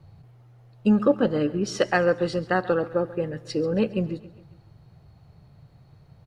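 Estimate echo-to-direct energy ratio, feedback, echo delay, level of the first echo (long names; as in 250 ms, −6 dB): −17.0 dB, 50%, 136 ms, −18.0 dB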